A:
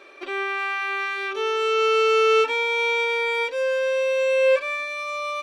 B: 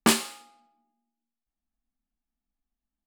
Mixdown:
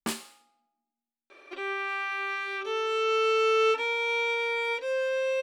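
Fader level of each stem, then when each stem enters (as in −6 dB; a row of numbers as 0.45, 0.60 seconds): −5.5, −11.5 decibels; 1.30, 0.00 seconds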